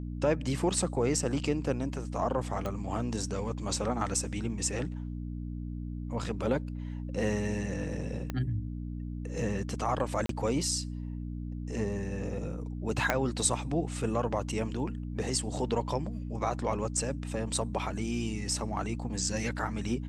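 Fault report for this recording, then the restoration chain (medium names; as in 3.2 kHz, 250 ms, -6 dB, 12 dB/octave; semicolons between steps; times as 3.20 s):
hum 60 Hz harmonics 5 -37 dBFS
2.66 s: pop -21 dBFS
8.30 s: pop -20 dBFS
10.26–10.29 s: dropout 33 ms
13.10 s: pop -11 dBFS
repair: de-click; de-hum 60 Hz, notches 5; interpolate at 10.26 s, 33 ms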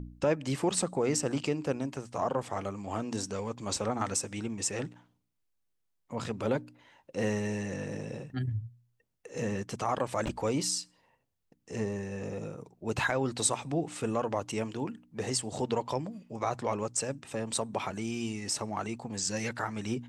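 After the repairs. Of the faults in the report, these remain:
8.30 s: pop
13.10 s: pop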